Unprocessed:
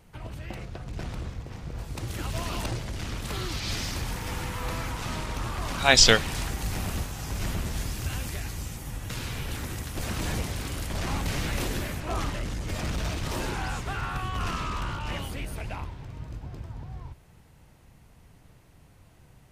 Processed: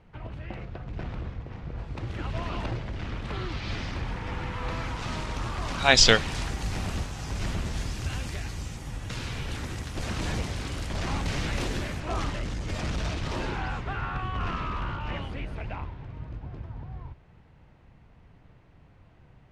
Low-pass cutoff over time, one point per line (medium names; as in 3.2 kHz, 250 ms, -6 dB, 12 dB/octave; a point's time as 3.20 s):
4.38 s 2.8 kHz
5.20 s 6.7 kHz
13.01 s 6.7 kHz
13.82 s 2.8 kHz